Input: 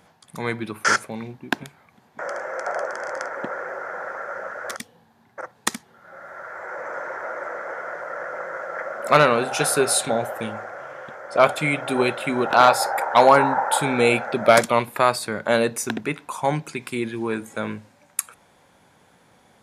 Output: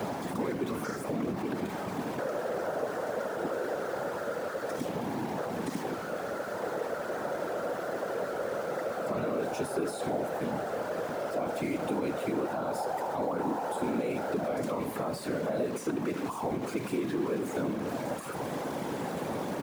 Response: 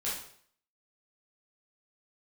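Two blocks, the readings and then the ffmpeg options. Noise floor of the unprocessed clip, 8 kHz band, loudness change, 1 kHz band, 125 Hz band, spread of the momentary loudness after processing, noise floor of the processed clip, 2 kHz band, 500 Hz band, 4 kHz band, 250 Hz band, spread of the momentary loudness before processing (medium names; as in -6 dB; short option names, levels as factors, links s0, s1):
-58 dBFS, -17.0 dB, -11.0 dB, -13.0 dB, -6.5 dB, 3 LU, -37 dBFS, -15.0 dB, -8.0 dB, -15.5 dB, -4.0 dB, 18 LU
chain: -filter_complex "[0:a]aeval=exprs='val(0)+0.5*0.0891*sgn(val(0))':c=same,acrossover=split=230[s0][s1];[s1]alimiter=limit=0.282:level=0:latency=1[s2];[s0][s2]amix=inputs=2:normalize=0,flanger=delay=6.4:depth=5.8:regen=63:speed=0.92:shape=triangular,afftfilt=real='hypot(re,im)*cos(2*PI*random(0))':imag='hypot(re,im)*sin(2*PI*random(1))':win_size=512:overlap=0.75,aecho=1:1:75|150|225:0.126|0.0478|0.0182,acontrast=80,acrusher=bits=5:mode=log:mix=0:aa=0.000001,asoftclip=type=tanh:threshold=0.178,highpass=170,highshelf=f=3500:g=-6,acrossover=split=260|660|4800[s3][s4][s5][s6];[s3]acompressor=threshold=0.00891:ratio=4[s7];[s4]acompressor=threshold=0.02:ratio=4[s8];[s5]acompressor=threshold=0.0158:ratio=4[s9];[s6]acompressor=threshold=0.02:ratio=4[s10];[s7][s8][s9][s10]amix=inputs=4:normalize=0,tiltshelf=f=1100:g=7,volume=0.668"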